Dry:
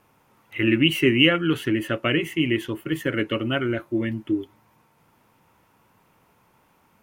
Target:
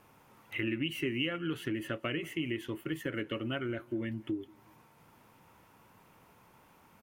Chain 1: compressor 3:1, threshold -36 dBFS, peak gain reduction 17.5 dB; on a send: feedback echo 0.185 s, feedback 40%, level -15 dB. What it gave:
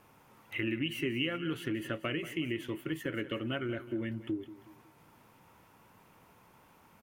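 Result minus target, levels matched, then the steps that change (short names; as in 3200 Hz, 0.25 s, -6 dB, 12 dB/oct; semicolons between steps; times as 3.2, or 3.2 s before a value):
echo-to-direct +10.5 dB
change: feedback echo 0.185 s, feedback 40%, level -25.5 dB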